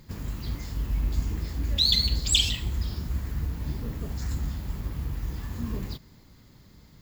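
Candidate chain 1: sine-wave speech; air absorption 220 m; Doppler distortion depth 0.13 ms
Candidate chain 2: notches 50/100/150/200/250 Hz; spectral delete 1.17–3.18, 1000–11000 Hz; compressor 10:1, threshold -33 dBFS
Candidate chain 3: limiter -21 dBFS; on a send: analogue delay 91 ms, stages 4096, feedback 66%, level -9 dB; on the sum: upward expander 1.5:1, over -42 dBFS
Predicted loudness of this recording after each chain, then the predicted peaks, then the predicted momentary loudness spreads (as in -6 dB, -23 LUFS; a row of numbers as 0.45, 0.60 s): -27.5, -39.5, -34.0 LUFS; -6.0, -26.0, -18.0 dBFS; 23, 10, 9 LU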